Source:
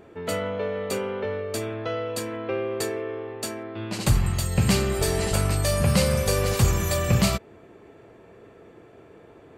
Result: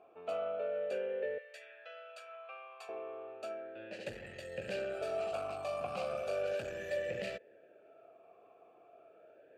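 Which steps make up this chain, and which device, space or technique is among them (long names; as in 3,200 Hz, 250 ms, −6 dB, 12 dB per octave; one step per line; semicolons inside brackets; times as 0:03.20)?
0:01.38–0:02.89: Bessel high-pass filter 1,200 Hz, order 4
talk box (tube saturation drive 18 dB, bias 0.3; formant filter swept between two vowels a-e 0.35 Hz)
level +1 dB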